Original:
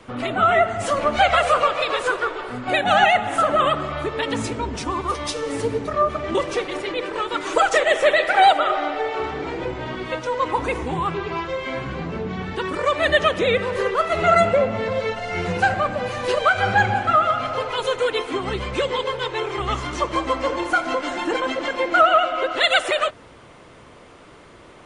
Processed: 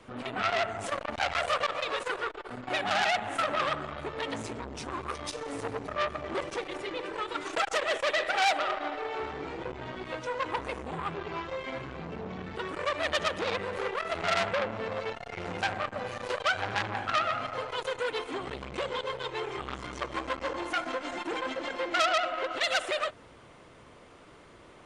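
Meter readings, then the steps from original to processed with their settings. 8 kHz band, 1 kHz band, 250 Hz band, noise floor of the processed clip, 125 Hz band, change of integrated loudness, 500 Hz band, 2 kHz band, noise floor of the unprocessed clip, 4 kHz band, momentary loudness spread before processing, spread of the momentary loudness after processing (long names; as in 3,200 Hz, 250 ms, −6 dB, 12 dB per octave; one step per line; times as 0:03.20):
−7.0 dB, −12.0 dB, −11.5 dB, −53 dBFS, −12.5 dB, −11.0 dB, −12.0 dB, −9.5 dB, −46 dBFS, −8.0 dB, 10 LU, 10 LU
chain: saturating transformer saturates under 3,000 Hz
level −7 dB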